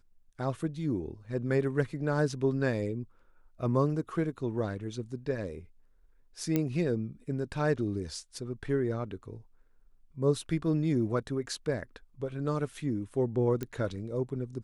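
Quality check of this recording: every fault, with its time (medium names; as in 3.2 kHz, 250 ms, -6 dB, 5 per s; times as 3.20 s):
6.56 s: pop -15 dBFS
13.63 s: pop -21 dBFS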